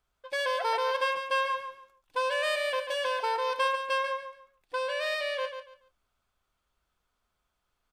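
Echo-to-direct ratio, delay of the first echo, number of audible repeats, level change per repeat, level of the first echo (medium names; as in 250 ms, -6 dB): -7.5 dB, 142 ms, 3, -12.5 dB, -8.0 dB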